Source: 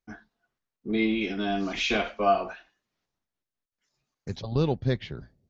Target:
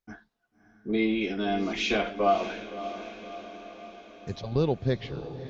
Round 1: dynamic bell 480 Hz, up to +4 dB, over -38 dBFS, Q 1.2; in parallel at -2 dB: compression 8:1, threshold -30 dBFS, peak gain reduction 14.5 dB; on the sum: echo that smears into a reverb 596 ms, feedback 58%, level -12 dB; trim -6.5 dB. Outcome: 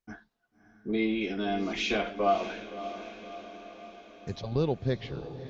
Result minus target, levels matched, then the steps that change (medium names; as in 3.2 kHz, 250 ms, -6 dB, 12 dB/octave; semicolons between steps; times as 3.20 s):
compression: peak gain reduction +9 dB
change: compression 8:1, threshold -19.5 dBFS, peak gain reduction 5.5 dB